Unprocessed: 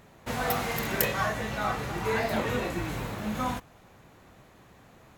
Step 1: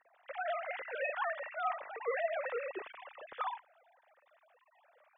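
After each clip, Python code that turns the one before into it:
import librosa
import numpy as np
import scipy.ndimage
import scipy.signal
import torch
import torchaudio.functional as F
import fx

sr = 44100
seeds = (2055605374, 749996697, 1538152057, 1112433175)

y = fx.sine_speech(x, sr)
y = y * 10.0 ** (-8.5 / 20.0)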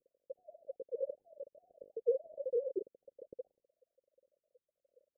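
y = scipy.signal.sosfilt(scipy.signal.butter(16, 540.0, 'lowpass', fs=sr, output='sos'), x)
y = y * 10.0 ** (5.5 / 20.0)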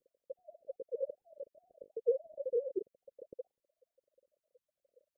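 y = fx.dereverb_blind(x, sr, rt60_s=0.52)
y = y * 10.0 ** (1.0 / 20.0)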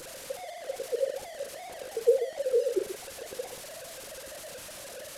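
y = fx.delta_mod(x, sr, bps=64000, step_db=-45.0)
y = fx.echo_multitap(y, sr, ms=(41, 132), db=(-10.0, -10.5))
y = y * 10.0 ** (8.0 / 20.0)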